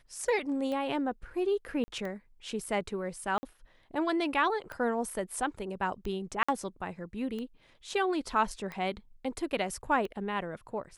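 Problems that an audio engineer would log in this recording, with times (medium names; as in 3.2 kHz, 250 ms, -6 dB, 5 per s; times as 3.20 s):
tick 45 rpm -26 dBFS
1.84–1.88 s: dropout 40 ms
3.38–3.43 s: dropout 50 ms
6.43–6.49 s: dropout 55 ms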